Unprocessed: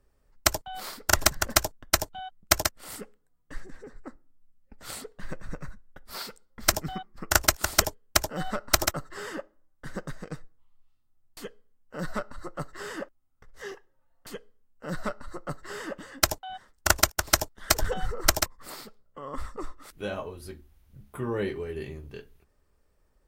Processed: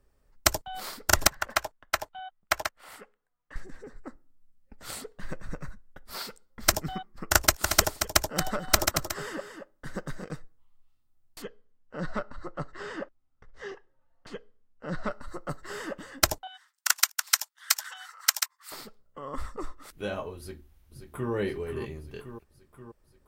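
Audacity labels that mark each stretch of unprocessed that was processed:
1.270000	3.560000	three-band isolator lows -14 dB, under 580 Hz, highs -12 dB, over 3.1 kHz
7.460000	10.310000	delay 228 ms -8 dB
11.420000	15.110000	distance through air 110 m
16.470000	18.720000	Bessel high-pass 1.6 kHz, order 8
20.380000	21.320000	echo throw 530 ms, feedback 65%, level -8 dB

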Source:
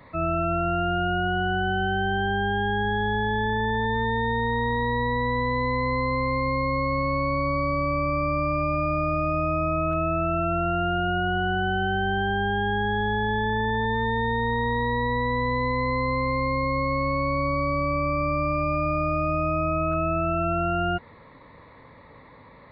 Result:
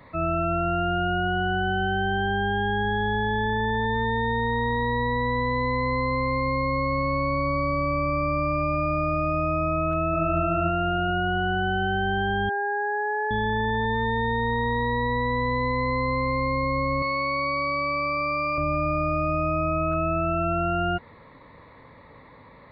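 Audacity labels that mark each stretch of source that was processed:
9.690000	10.250000	echo throw 440 ms, feedback 20%, level -6 dB
12.490000	13.310000	brick-wall FIR band-pass 380–1800 Hz
17.020000	18.580000	tilt EQ +3.5 dB/octave

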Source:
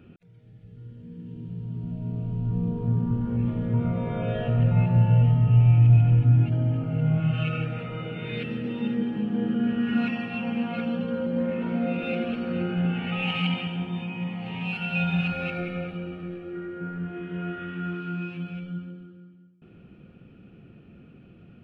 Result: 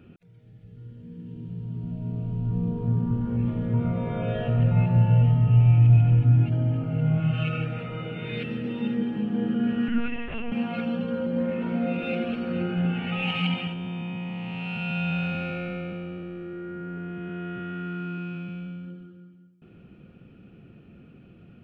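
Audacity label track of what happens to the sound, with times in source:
9.880000	10.520000	LPC vocoder at 8 kHz pitch kept
13.730000	18.850000	spectral blur width 342 ms

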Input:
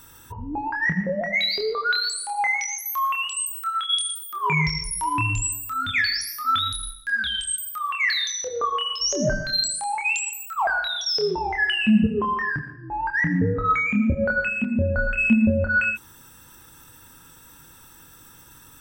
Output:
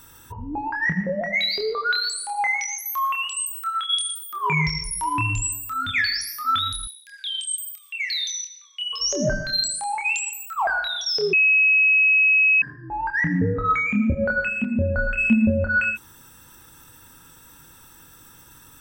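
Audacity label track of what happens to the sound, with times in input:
6.870000	8.930000	elliptic high-pass 2.3 kHz, stop band 60 dB
11.330000	12.620000	bleep 2.56 kHz -13.5 dBFS

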